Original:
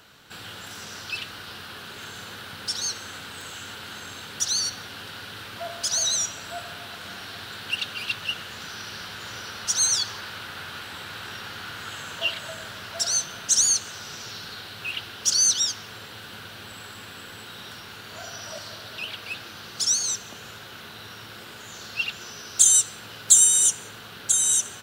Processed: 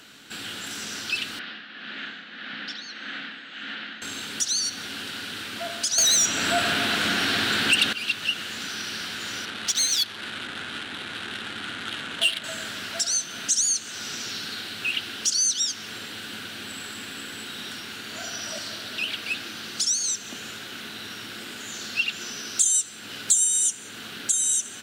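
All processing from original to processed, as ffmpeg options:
-filter_complex "[0:a]asettb=1/sr,asplit=3[a][b][c];[a]atrim=end=1.394[d];[b]atrim=start=1.39:end=4.02,asetpts=PTS-STARTPTS,afade=t=in:d=0.004:c=qsin,afade=t=out:st=2.626:d=0.004:c=qsin,tremolo=f=1.7:d=0.59,highpass=f=170:w=0.5412,highpass=f=170:w=1.3066,equalizer=f=400:t=q:w=4:g=-9,equalizer=f=960:t=q:w=4:g=-4,equalizer=f=1.8k:t=q:w=4:g=6,lowpass=f=3.7k:w=0.5412,lowpass=f=3.7k:w=1.3066[e];[c]atrim=start=4.016[f];[d][e]acrossfade=d=0.004:c1=hsin:c2=qsin[g];[g][f]acrossfade=d=0.004:c1=qsin:c2=hsin,asettb=1/sr,asplit=3[h][i][j];[h]atrim=end=5.984[k];[i]atrim=start=5.98:end=7.93,asetpts=PTS-STARTPTS,afade=t=in:d=0.004:c=qsin,afade=t=out:st=1.946:d=0.004:c=qsin,highshelf=f=3.5k:g=-6,acontrast=57,aeval=exprs='0.299*sin(PI/2*2.24*val(0)/0.299)':c=same[l];[j]atrim=start=7.926[m];[k][l]acrossfade=d=0.004:c1=hsin:c2=qsin[n];[n][m]acrossfade=d=0.004:c1=qsin:c2=hsin,asettb=1/sr,asplit=3[o][p][q];[o]atrim=end=9.454[r];[p]atrim=start=9.45:end=12.44,asetpts=PTS-STARTPTS,afade=t=in:d=0.004:c=qsin,afade=t=out:st=2.986:d=0.004:c=qsin,equalizer=f=3.6k:w=1.9:g=8,adynamicsmooth=sensitivity=3.5:basefreq=1.1k[s];[q]atrim=start=12.436[t];[r][s]acrossfade=d=0.004:c1=hsin:c2=qsin[u];[u][t]acrossfade=d=0.004:c1=qsin:c2=hsin,equalizer=f=250:t=o:w=1:g=10,equalizer=f=500:t=o:w=1:g=-7,equalizer=f=1k:t=o:w=1:g=-9,equalizer=f=8k:t=o:w=1:g=7,acompressor=threshold=-29dB:ratio=2,bass=f=250:g=-13,treble=f=4k:g=-7,volume=7.5dB"

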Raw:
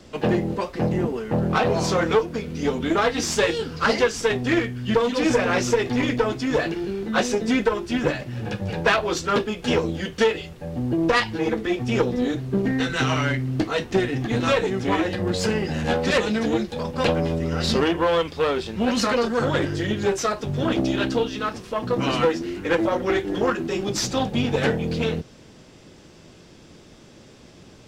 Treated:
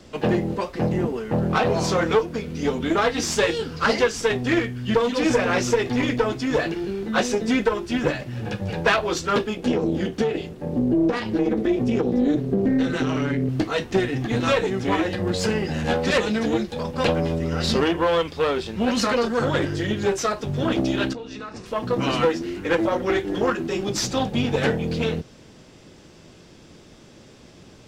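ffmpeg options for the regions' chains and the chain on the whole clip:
-filter_complex "[0:a]asettb=1/sr,asplit=3[a][b][c];[a]atrim=end=9.574[d];[b]atrim=start=9.57:end=13.49,asetpts=PTS-STARTPTS,afade=t=in:d=0.004:c=qsin,afade=t=out:st=3.916:d=0.004:c=qsin,tremolo=f=300:d=0.71,acompressor=threshold=-25dB:ratio=5:attack=3.2:release=140:knee=1:detection=peak,equalizer=f=290:w=0.75:g=12.5[e];[c]atrim=start=13.486[f];[d][e]acrossfade=d=0.004:c1=hsin:c2=qsin[g];[g][f]acrossfade=d=0.004:c1=qsin:c2=hsin,asettb=1/sr,asplit=3[h][i][j];[h]atrim=end=21.134[k];[i]atrim=start=21.13:end=21.66,asetpts=PTS-STARTPTS,afade=t=in:d=0.004:c=qsin,afade=t=out:st=0.526:d=0.004:c=qsin,lowpass=f=8.5k:w=0.5412,lowpass=f=8.5k:w=1.3066,bandreject=f=3.2k:w=7.1,acompressor=threshold=-31dB:ratio=8:attack=3.2:release=140:knee=1:detection=peak[l];[j]atrim=start=21.656[m];[k][l]acrossfade=d=0.004:c1=hsin:c2=qsin[n];[n][m]acrossfade=d=0.004:c1=qsin:c2=hsin"

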